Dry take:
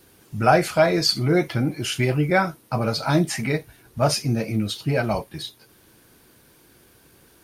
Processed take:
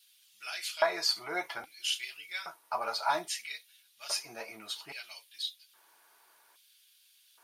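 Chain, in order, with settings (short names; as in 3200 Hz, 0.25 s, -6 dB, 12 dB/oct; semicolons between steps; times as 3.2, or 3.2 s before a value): LFO high-pass square 0.61 Hz 890–3300 Hz; notch comb 260 Hz; gain -7 dB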